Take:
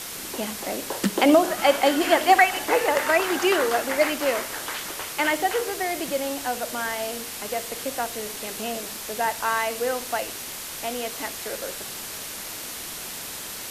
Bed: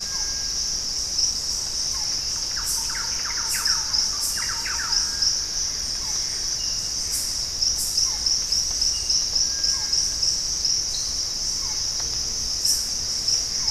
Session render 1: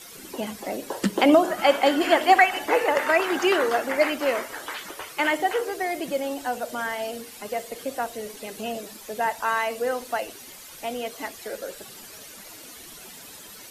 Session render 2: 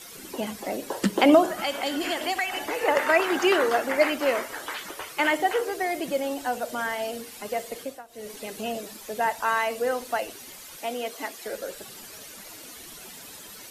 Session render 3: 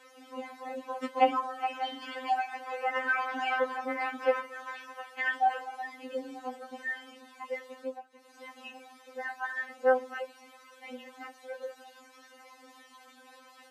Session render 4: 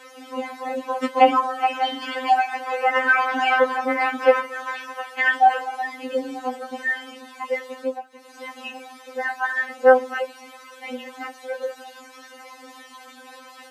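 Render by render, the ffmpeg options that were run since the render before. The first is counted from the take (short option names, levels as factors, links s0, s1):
-af "afftdn=nr=12:nf=-35"
-filter_complex "[0:a]asettb=1/sr,asplit=3[s0][s1][s2];[s0]atrim=end=1.464[s3];[s1]atrim=start=1.46:end=2.83,asetpts=PTS-STARTPTS,afade=t=in:d=0.004:c=qsin,afade=t=out:st=1.366:d=0.004:c=qsin,acrossover=split=180|3000[s4][s5][s6];[s5]acompressor=threshold=0.0447:ratio=6:attack=3.2:release=140:knee=2.83:detection=peak[s7];[s4][s7][s6]amix=inputs=3:normalize=0[s8];[s2]atrim=start=2.826[s9];[s3][s8]acrossfade=d=0.004:c1=hsin:c2=qsin[s10];[s10][s9]acrossfade=d=0.004:c1=qsin:c2=hsin,asettb=1/sr,asplit=3[s11][s12][s13];[s11]atrim=end=10.774[s14];[s12]atrim=start=10.77:end=11.45,asetpts=PTS-STARTPTS,afade=t=in:d=0.004:c=qsin,afade=t=out:st=0.676:d=0.004:c=qsin,highpass=210[s15];[s13]atrim=start=11.446[s16];[s14][s15]acrossfade=d=0.004:c1=hsin:c2=qsin[s17];[s17][s16]acrossfade=d=0.004:c1=qsin:c2=hsin,asplit=3[s18][s19][s20];[s18]atrim=end=8.03,asetpts=PTS-STARTPTS,afade=t=out:st=7.77:d=0.26:silence=0.105925[s21];[s19]atrim=start=8.03:end=8.08,asetpts=PTS-STARTPTS,volume=0.106[s22];[s20]atrim=start=8.08,asetpts=PTS-STARTPTS,afade=t=in:d=0.26:silence=0.105925[s23];[s21][s22][s23]concat=n=3:v=0:a=1"
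-af "bandpass=f=880:t=q:w=0.92:csg=0,afftfilt=real='re*3.46*eq(mod(b,12),0)':imag='im*3.46*eq(mod(b,12),0)':win_size=2048:overlap=0.75"
-af "volume=3.55,alimiter=limit=0.794:level=0:latency=1"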